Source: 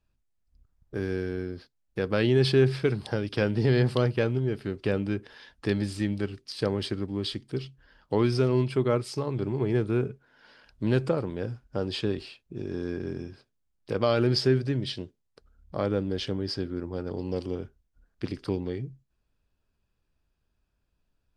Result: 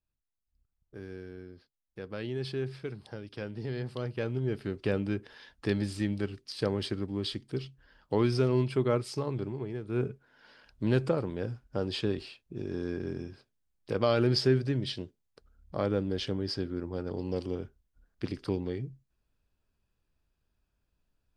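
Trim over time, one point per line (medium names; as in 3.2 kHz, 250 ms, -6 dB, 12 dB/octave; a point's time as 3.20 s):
3.91 s -13 dB
4.51 s -2.5 dB
9.31 s -2.5 dB
9.82 s -13.5 dB
10.01 s -2 dB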